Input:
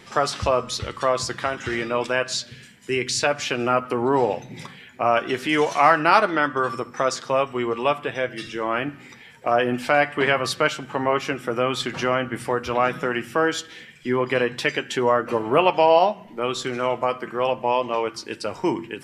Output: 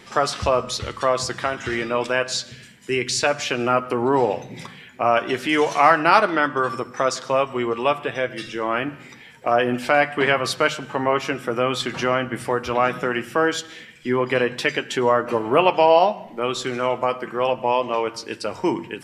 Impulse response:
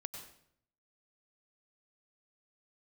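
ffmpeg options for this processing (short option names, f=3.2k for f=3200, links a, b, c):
-filter_complex "[0:a]bandreject=f=50:t=h:w=6,bandreject=f=100:t=h:w=6,bandreject=f=150:t=h:w=6,asplit=2[a][b];[1:a]atrim=start_sample=2205,asetrate=40131,aresample=44100[c];[b][c]afir=irnorm=-1:irlink=0,volume=-13.5dB[d];[a][d]amix=inputs=2:normalize=0"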